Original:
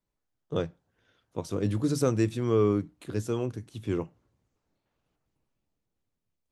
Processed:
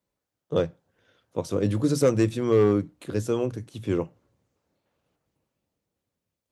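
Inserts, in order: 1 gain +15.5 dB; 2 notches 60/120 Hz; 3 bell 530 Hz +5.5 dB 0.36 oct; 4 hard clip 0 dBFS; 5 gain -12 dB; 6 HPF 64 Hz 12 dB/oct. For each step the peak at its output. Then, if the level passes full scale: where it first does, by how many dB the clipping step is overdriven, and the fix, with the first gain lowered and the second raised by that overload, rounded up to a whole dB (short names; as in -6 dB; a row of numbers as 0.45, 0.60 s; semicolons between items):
+3.0, +3.0, +4.5, 0.0, -12.0, -10.0 dBFS; step 1, 4.5 dB; step 1 +10.5 dB, step 5 -7 dB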